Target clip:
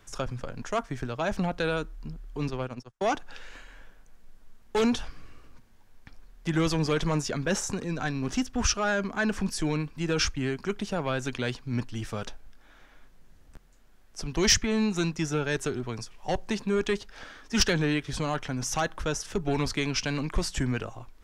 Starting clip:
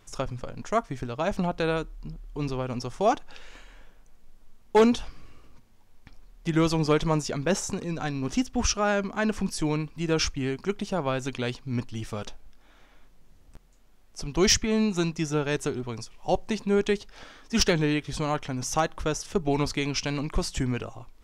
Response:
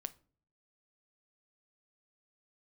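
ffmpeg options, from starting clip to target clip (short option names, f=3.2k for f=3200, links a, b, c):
-filter_complex "[0:a]asplit=3[a][b][c];[a]afade=t=out:st=2.45:d=0.02[d];[b]agate=range=-44dB:threshold=-29dB:ratio=16:detection=peak,afade=t=in:st=2.45:d=0.02,afade=t=out:st=3.1:d=0.02[e];[c]afade=t=in:st=3.1:d=0.02[f];[d][e][f]amix=inputs=3:normalize=0,equalizer=f=1.6k:t=o:w=0.46:g=5.5,acrossover=split=160|2000[g][h][i];[h]asoftclip=type=tanh:threshold=-21.5dB[j];[g][j][i]amix=inputs=3:normalize=0"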